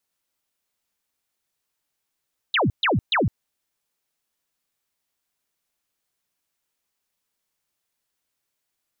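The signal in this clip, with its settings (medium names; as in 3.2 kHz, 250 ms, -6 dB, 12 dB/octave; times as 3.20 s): burst of laser zaps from 4.1 kHz, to 80 Hz, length 0.16 s sine, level -17 dB, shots 3, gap 0.13 s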